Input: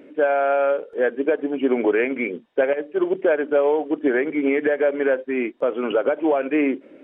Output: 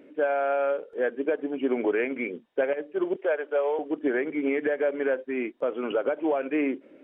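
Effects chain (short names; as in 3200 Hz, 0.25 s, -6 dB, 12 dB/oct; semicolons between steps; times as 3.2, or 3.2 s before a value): 3.16–3.79 HPF 420 Hz 24 dB/oct; gain -6 dB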